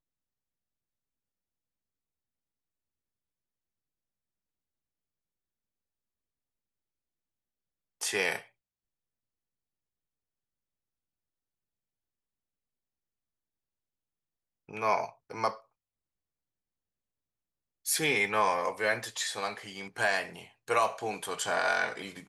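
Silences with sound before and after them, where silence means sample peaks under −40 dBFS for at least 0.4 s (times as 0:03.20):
0:08.42–0:14.69
0:15.55–0:17.86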